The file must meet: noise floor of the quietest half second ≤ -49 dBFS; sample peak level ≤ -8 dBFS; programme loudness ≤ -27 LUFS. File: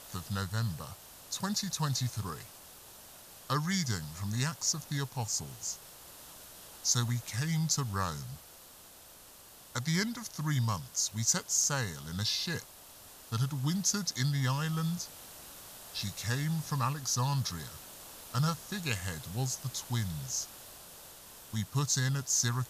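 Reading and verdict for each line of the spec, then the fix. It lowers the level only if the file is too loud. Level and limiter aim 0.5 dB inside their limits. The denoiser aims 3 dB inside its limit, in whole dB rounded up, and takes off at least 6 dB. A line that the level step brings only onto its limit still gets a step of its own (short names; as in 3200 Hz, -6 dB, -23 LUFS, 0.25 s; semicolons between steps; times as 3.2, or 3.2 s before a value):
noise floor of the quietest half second -54 dBFS: OK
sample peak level -13.5 dBFS: OK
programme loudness -33.0 LUFS: OK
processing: none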